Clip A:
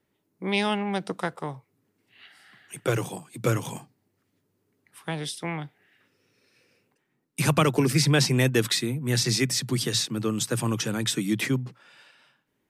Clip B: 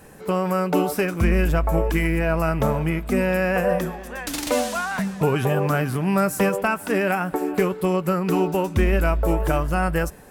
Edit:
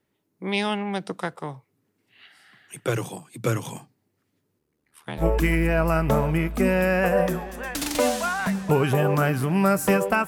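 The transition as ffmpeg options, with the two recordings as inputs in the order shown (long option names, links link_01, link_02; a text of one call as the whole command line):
ffmpeg -i cue0.wav -i cue1.wav -filter_complex "[0:a]asettb=1/sr,asplit=3[link_01][link_02][link_03];[link_01]atrim=end=4.584[link_04];[link_02]atrim=start=4.58:end=5.25,asetpts=PTS-STARTPTS,afade=type=in:duration=0.004:curve=qsin,afade=type=out:start_time=0.666:duration=0.004:curve=qsin,aeval=exprs='val(0)*sin(2*PI*38*n/s)':channel_layout=same[link_05];[link_03]atrim=start=5.246[link_06];[link_04][link_05]acrossfade=duration=0.004:curve1=hsin:curve2=qsin[link_07];[link_07][link_06]acrossfade=duration=0.004:curve1=qsin:curve2=hsin,apad=whole_dur=10.27,atrim=end=10.27,atrim=end=5.25,asetpts=PTS-STARTPTS[link_08];[1:a]atrim=start=1.69:end=6.79,asetpts=PTS-STARTPTS[link_09];[link_08][link_09]acrossfade=duration=0.08:curve1=tri:curve2=tri" out.wav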